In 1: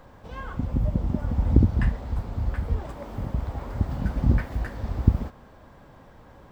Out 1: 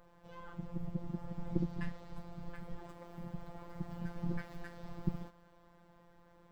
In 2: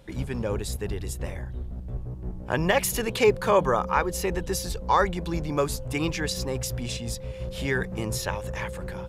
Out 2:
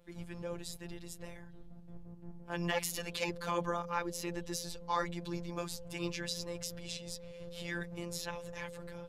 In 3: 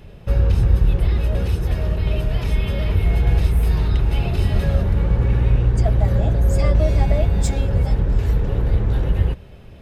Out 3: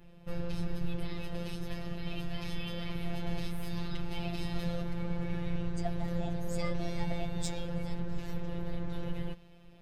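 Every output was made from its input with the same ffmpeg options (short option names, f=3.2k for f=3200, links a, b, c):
-af "afftfilt=real='hypot(re,im)*cos(PI*b)':imag='0':win_size=1024:overlap=0.75,adynamicequalizer=threshold=0.00355:dfrequency=4400:dqfactor=0.87:tfrequency=4400:tqfactor=0.87:attack=5:release=100:ratio=0.375:range=3:mode=boostabove:tftype=bell,volume=-9dB"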